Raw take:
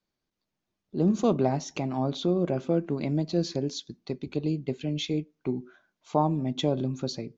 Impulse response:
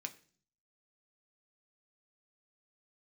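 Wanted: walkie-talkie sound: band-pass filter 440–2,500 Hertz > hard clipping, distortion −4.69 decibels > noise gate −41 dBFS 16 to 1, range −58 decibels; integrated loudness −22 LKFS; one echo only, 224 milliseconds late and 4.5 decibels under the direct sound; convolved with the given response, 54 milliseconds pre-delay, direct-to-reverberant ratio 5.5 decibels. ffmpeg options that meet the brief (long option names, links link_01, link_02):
-filter_complex "[0:a]aecho=1:1:224:0.596,asplit=2[link_01][link_02];[1:a]atrim=start_sample=2205,adelay=54[link_03];[link_02][link_03]afir=irnorm=-1:irlink=0,volume=-3.5dB[link_04];[link_01][link_04]amix=inputs=2:normalize=0,highpass=440,lowpass=2500,asoftclip=type=hard:threshold=-32.5dB,agate=range=-58dB:threshold=-41dB:ratio=16,volume=15.5dB"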